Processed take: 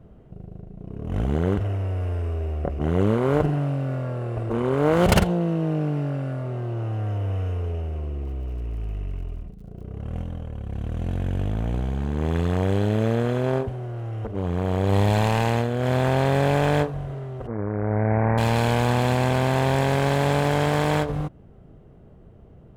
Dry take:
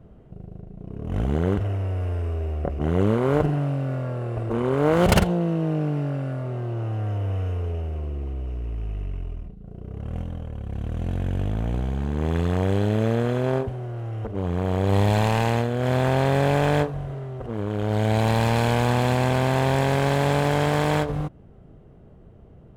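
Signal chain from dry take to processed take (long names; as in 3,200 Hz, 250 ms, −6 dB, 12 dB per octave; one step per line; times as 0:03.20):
0:08.22–0:09.85: surface crackle 56 per second −47 dBFS
0:17.47–0:18.38: Butterworth low-pass 2,200 Hz 72 dB per octave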